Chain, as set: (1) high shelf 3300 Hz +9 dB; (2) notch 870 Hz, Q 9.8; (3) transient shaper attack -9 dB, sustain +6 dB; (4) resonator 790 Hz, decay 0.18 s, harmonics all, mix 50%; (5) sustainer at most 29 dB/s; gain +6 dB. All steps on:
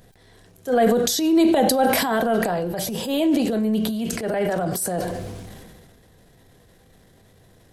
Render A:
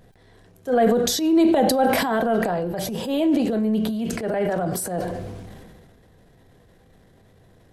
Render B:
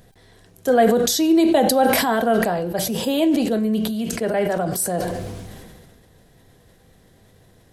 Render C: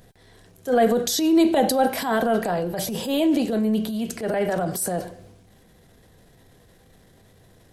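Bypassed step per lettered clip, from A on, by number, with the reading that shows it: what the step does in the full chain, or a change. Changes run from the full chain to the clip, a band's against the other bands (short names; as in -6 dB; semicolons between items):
1, 8 kHz band -2.5 dB; 3, loudness change +1.5 LU; 5, crest factor change -2.5 dB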